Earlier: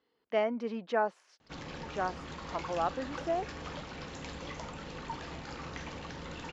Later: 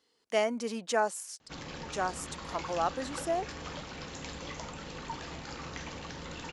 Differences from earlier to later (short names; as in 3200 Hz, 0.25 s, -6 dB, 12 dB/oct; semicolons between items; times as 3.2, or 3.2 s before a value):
speech: remove air absorption 260 m; master: add high shelf 5800 Hz +10 dB